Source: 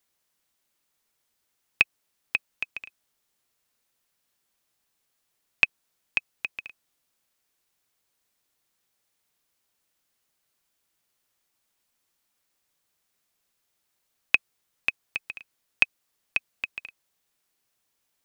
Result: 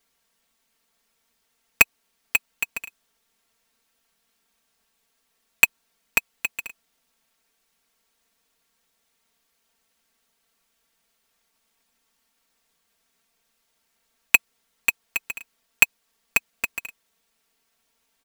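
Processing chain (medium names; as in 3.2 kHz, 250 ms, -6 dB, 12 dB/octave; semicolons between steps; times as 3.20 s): square wave that keeps the level; comb 4.4 ms, depth 93%; trim -1 dB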